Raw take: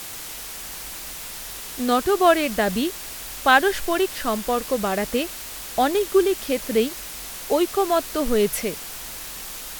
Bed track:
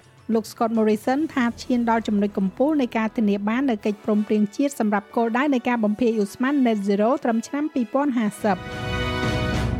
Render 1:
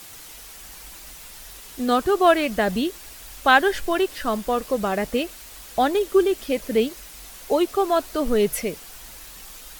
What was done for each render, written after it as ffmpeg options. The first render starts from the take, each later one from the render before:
ffmpeg -i in.wav -af "afftdn=noise_reduction=8:noise_floor=-35" out.wav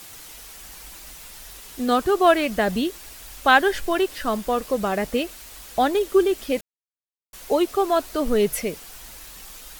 ffmpeg -i in.wav -filter_complex "[0:a]asplit=3[link_01][link_02][link_03];[link_01]atrim=end=6.61,asetpts=PTS-STARTPTS,afade=type=out:start_time=6.606:duration=0.004:curve=hsin[link_04];[link_02]atrim=start=6.61:end=7.33,asetpts=PTS-STARTPTS,volume=0[link_05];[link_03]atrim=start=7.33,asetpts=PTS-STARTPTS,afade=type=in:duration=0.004:curve=hsin[link_06];[link_04][link_05][link_06]concat=n=3:v=0:a=1" out.wav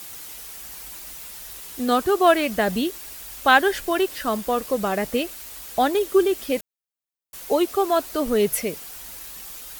ffmpeg -i in.wav -af "highpass=frequency=62:poles=1,highshelf=frequency=11000:gain=7.5" out.wav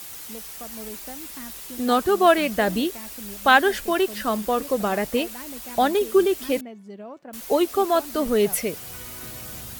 ffmpeg -i in.wav -i bed.wav -filter_complex "[1:a]volume=-19.5dB[link_01];[0:a][link_01]amix=inputs=2:normalize=0" out.wav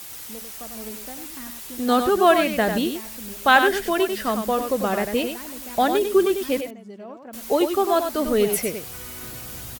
ffmpeg -i in.wav -af "aecho=1:1:97:0.447" out.wav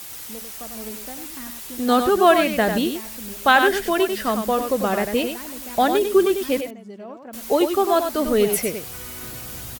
ffmpeg -i in.wav -af "volume=1.5dB,alimiter=limit=-3dB:level=0:latency=1" out.wav

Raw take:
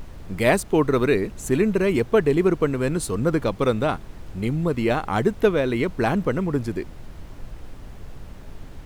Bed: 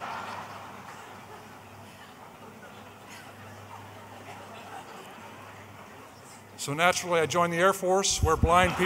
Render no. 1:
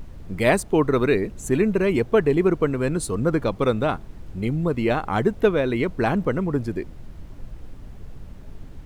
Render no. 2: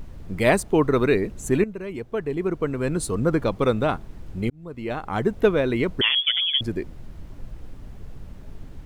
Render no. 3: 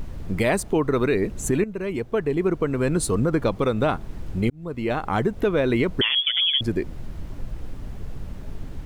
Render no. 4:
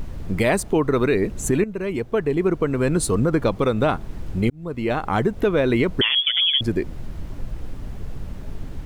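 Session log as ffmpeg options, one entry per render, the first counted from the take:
ffmpeg -i in.wav -af "afftdn=noise_reduction=6:noise_floor=-41" out.wav
ffmpeg -i in.wav -filter_complex "[0:a]asettb=1/sr,asplit=3[link_01][link_02][link_03];[link_01]atrim=end=6.014[link_04];[link_02]atrim=start=6.01:end=6.61,asetpts=PTS-STARTPTS,afade=type=in:duration=0.004:curve=qsin,afade=type=out:start_time=0.596:duration=0.004:curve=qsin,lowpass=frequency=3000:width_type=q:width=0.5098,lowpass=frequency=3000:width_type=q:width=0.6013,lowpass=frequency=3000:width_type=q:width=0.9,lowpass=frequency=3000:width_type=q:width=2.563,afreqshift=-3500[link_05];[link_03]atrim=start=6.606[link_06];[link_04][link_05]acrossfade=duration=0.004:curve1=hsin:curve2=qsin[link_07];[link_07][link_06]acrossfade=duration=0.004:curve1=qsin:curve2=hsin,asplit=3[link_08][link_09][link_10];[link_08]atrim=end=1.64,asetpts=PTS-STARTPTS,afade=type=out:start_time=1.636:duration=0.004:curve=hsin:silence=0.223872[link_11];[link_09]atrim=start=1.64:end=4.5,asetpts=PTS-STARTPTS,afade=type=in:duration=1.38:curve=qua:silence=0.223872,afade=type=out:start_time=2.856:duration=0.004:curve=hsin[link_12];[link_10]atrim=start=4.5,asetpts=PTS-STARTPTS,afade=type=in:duration=0.95[link_13];[link_11][link_12][link_13]concat=n=3:v=0:a=1" out.wav
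ffmpeg -i in.wav -filter_complex "[0:a]asplit=2[link_01][link_02];[link_02]acompressor=threshold=-28dB:ratio=6,volume=-1dB[link_03];[link_01][link_03]amix=inputs=2:normalize=0,alimiter=limit=-11.5dB:level=0:latency=1:release=119" out.wav
ffmpeg -i in.wav -af "volume=2dB" out.wav

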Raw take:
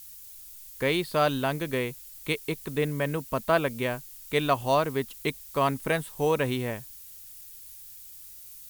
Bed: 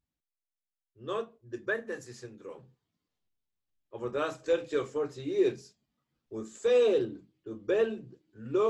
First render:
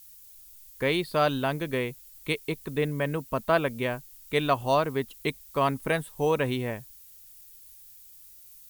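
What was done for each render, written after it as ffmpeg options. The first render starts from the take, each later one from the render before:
ffmpeg -i in.wav -af "afftdn=noise_reduction=6:noise_floor=-46" out.wav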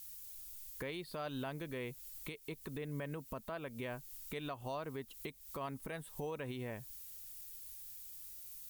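ffmpeg -i in.wav -af "acompressor=threshold=-35dB:ratio=2.5,alimiter=level_in=8dB:limit=-24dB:level=0:latency=1:release=229,volume=-8dB" out.wav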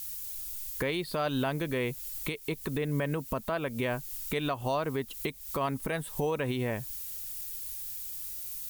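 ffmpeg -i in.wav -af "volume=11.5dB" out.wav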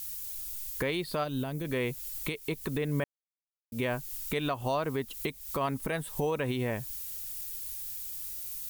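ffmpeg -i in.wav -filter_complex "[0:a]asplit=3[link_01][link_02][link_03];[link_01]afade=type=out:start_time=1.23:duration=0.02[link_04];[link_02]equalizer=frequency=1500:width=0.35:gain=-11,afade=type=in:start_time=1.23:duration=0.02,afade=type=out:start_time=1.64:duration=0.02[link_05];[link_03]afade=type=in:start_time=1.64:duration=0.02[link_06];[link_04][link_05][link_06]amix=inputs=3:normalize=0,asplit=3[link_07][link_08][link_09];[link_07]atrim=end=3.04,asetpts=PTS-STARTPTS,afade=type=out:start_time=3.036:duration=0.004:curve=hsin[link_10];[link_08]atrim=start=3.04:end=3.72,asetpts=PTS-STARTPTS,volume=0[link_11];[link_09]atrim=start=3.72,asetpts=PTS-STARTPTS,afade=type=in:duration=0.004:curve=hsin[link_12];[link_10][link_11][link_12]concat=n=3:v=0:a=1" out.wav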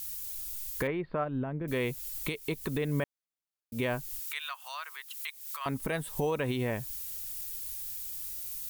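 ffmpeg -i in.wav -filter_complex "[0:a]asettb=1/sr,asplit=3[link_01][link_02][link_03];[link_01]atrim=end=0.874[link_04];[link_02]atrim=start=0.87:end=1.68,asetpts=PTS-STARTPTS,afade=type=in:duration=0.004:curve=qsin,afade=type=out:start_time=0.806:duration=0.004:curve=qsin,lowpass=frequency=2000:width=0.5412,lowpass=frequency=2000:width=1.3066[link_05];[link_03]atrim=start=1.676[link_06];[link_04][link_05]acrossfade=duration=0.004:curve1=hsin:curve2=qsin[link_07];[link_07][link_06]acrossfade=duration=0.004:curve1=qsin:curve2=hsin,asettb=1/sr,asplit=3[link_08][link_09][link_10];[link_08]atrim=end=4.194[link_11];[link_09]atrim=start=4.19:end=5.66,asetpts=PTS-STARTPTS,afade=type=in:duration=0.004:curve=qsin,afade=type=out:start_time=1.466:duration=0.004:curve=qsin,highpass=frequency=1200:width=0.5412,highpass=frequency=1200:width=1.3066[link_12];[link_10]atrim=start=5.656[link_13];[link_11][link_12]acrossfade=duration=0.004:curve1=hsin:curve2=qsin[link_14];[link_14][link_13]acrossfade=duration=0.004:curve1=qsin:curve2=hsin" out.wav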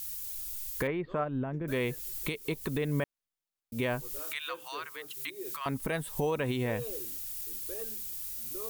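ffmpeg -i in.wav -i bed.wav -filter_complex "[1:a]volume=-17dB[link_01];[0:a][link_01]amix=inputs=2:normalize=0" out.wav

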